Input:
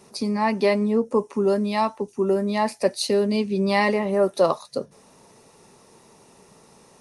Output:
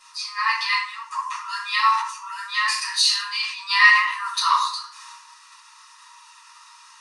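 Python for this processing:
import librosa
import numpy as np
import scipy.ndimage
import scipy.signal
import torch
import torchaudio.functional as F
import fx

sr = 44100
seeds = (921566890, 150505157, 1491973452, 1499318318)

y = scipy.signal.sosfilt(scipy.signal.butter(2, 6700.0, 'lowpass', fs=sr, output='sos'), x)
y = fx.notch(y, sr, hz=2200.0, q=7.4)
y = fx.transient(y, sr, attack_db=-8, sustain_db=7)
y = fx.brickwall_highpass(y, sr, low_hz=900.0)
y = fx.room_shoebox(y, sr, seeds[0], volume_m3=75.0, walls='mixed', distance_m=2.1)
y = fx.sustainer(y, sr, db_per_s=80.0, at=(1.76, 4.18), fade=0.02)
y = F.gain(torch.from_numpy(y), 1.5).numpy()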